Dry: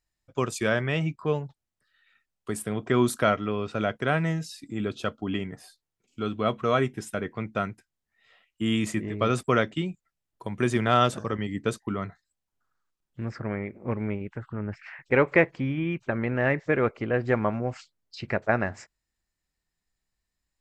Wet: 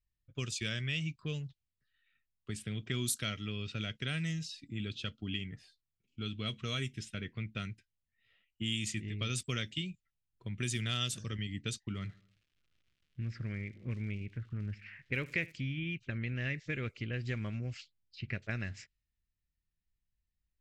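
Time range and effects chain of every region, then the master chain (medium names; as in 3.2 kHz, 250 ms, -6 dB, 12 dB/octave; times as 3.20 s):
11.94–15.51 s: feedback delay 78 ms, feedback 53%, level -23 dB + crackle 310 per s -51 dBFS
whole clip: level-controlled noise filter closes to 1.3 kHz, open at -19 dBFS; FFT filter 110 Hz 0 dB, 540 Hz -17 dB, 860 Hz -25 dB, 2.8 kHz +5 dB, 6.6 kHz +9 dB; compression 2:1, threshold -36 dBFS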